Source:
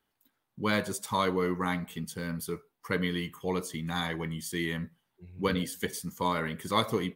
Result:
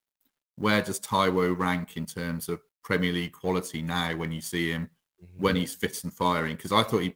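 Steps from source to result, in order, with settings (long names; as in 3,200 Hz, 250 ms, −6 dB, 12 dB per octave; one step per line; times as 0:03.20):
mu-law and A-law mismatch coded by A
level +5 dB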